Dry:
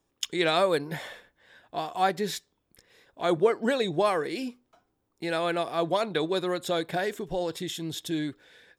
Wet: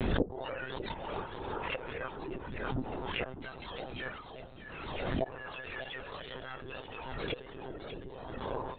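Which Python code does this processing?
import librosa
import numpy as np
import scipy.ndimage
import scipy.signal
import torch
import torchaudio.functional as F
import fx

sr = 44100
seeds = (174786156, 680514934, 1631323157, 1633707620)

y = fx.octave_mirror(x, sr, pivot_hz=1200.0)
y = fx.hum_notches(y, sr, base_hz=60, count=3)
y = fx.formant_shift(y, sr, semitones=4)
y = fx.gate_flip(y, sr, shuts_db=-30.0, range_db=-30)
y = fx.env_lowpass_down(y, sr, base_hz=860.0, full_db=-48.0)
y = fx.echo_feedback(y, sr, ms=602, feedback_pct=60, wet_db=-12.5)
y = fx.lpc_monotone(y, sr, seeds[0], pitch_hz=130.0, order=16)
y = fx.pre_swell(y, sr, db_per_s=33.0)
y = y * librosa.db_to_amplitude(17.0)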